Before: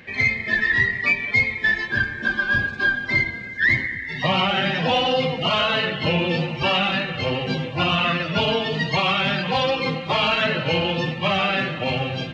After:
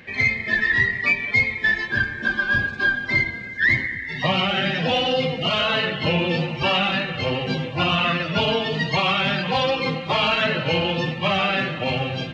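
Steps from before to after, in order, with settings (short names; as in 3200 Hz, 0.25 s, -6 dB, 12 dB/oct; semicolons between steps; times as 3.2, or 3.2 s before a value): 4.31–5.66 bell 960 Hz -7 dB 0.54 oct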